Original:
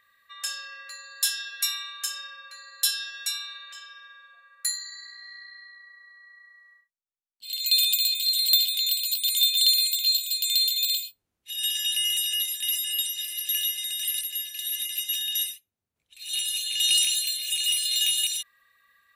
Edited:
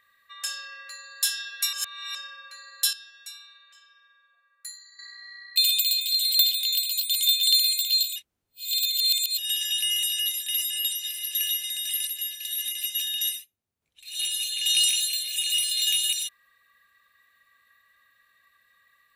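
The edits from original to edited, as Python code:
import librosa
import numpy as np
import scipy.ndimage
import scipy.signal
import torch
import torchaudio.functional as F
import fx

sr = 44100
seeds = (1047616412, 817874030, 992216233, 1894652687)

y = fx.edit(x, sr, fx.reverse_span(start_s=1.73, length_s=0.42),
    fx.clip_gain(start_s=2.93, length_s=2.06, db=-12.0),
    fx.cut(start_s=5.56, length_s=2.14),
    fx.reverse_span(start_s=10.3, length_s=1.22), tone=tone)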